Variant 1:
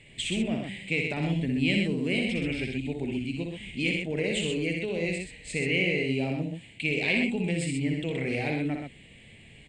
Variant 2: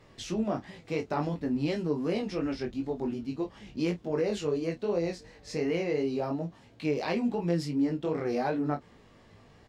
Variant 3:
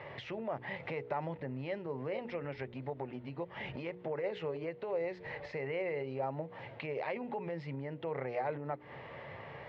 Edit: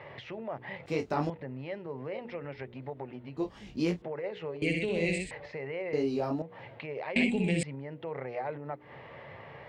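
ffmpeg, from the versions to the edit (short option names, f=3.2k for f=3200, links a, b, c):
-filter_complex "[1:a]asplit=3[a][b][c];[0:a]asplit=2[d][e];[2:a]asplit=6[f][g][h][i][j][k];[f]atrim=end=0.862[l];[a]atrim=start=0.858:end=1.302[m];[g]atrim=start=1.298:end=3.372[n];[b]atrim=start=3.368:end=4.022[o];[h]atrim=start=4.018:end=4.622[p];[d]atrim=start=4.618:end=5.312[q];[i]atrim=start=5.308:end=5.932[r];[c]atrim=start=5.928:end=6.422[s];[j]atrim=start=6.418:end=7.162[t];[e]atrim=start=7.158:end=7.632[u];[k]atrim=start=7.628[v];[l][m]acrossfade=d=0.004:c1=hsin:c2=hsin[w];[w][n]acrossfade=d=0.004:c1=hsin:c2=hsin[x];[x][o]acrossfade=d=0.004:c1=hsin:c2=hsin[y];[y][p]acrossfade=d=0.004:c1=hsin:c2=hsin[z];[z][q]acrossfade=d=0.004:c1=hsin:c2=hsin[aa];[aa][r]acrossfade=d=0.004:c1=hsin:c2=hsin[ab];[ab][s]acrossfade=d=0.004:c1=hsin:c2=hsin[ac];[ac][t]acrossfade=d=0.004:c1=hsin:c2=hsin[ad];[ad][u]acrossfade=d=0.004:c1=hsin:c2=hsin[ae];[ae][v]acrossfade=d=0.004:c1=hsin:c2=hsin"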